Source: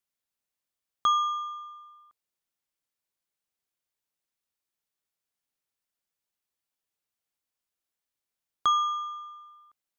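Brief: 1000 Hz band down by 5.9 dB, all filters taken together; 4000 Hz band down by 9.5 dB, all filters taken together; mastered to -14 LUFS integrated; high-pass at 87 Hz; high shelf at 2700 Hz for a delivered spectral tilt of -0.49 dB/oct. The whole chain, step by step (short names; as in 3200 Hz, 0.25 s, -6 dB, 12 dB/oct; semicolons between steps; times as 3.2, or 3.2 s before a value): HPF 87 Hz; bell 1000 Hz -6 dB; high shelf 2700 Hz -4.5 dB; bell 4000 Hz -8.5 dB; gain +20 dB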